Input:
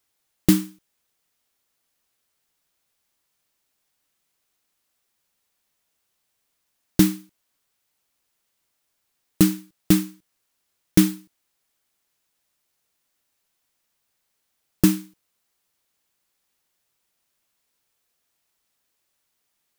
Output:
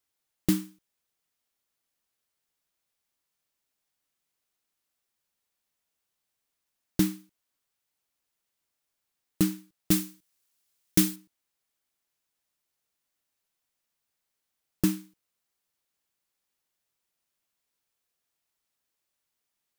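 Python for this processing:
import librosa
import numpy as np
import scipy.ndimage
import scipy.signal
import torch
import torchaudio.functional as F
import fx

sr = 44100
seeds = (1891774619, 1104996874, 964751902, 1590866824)

y = fx.high_shelf(x, sr, hz=3000.0, db=8.5, at=(9.91, 11.16))
y = y * librosa.db_to_amplitude(-8.0)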